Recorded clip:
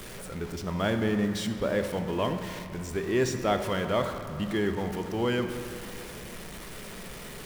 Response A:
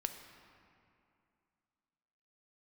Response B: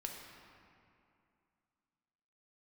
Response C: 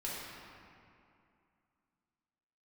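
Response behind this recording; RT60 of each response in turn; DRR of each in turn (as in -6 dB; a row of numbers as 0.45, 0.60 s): A; 2.5, 2.5, 2.5 s; 6.0, 0.5, -7.5 dB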